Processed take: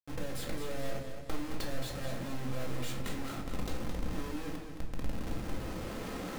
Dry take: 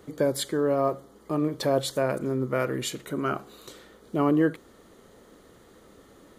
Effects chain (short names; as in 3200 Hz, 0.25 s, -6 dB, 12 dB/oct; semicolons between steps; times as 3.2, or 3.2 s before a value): recorder AGC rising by 13 dB/s; Schmitt trigger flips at -38.5 dBFS; power-law curve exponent 3; shoebox room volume 490 m³, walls furnished, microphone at 2.1 m; warbling echo 0.217 s, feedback 51%, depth 62 cents, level -8 dB; gain -4.5 dB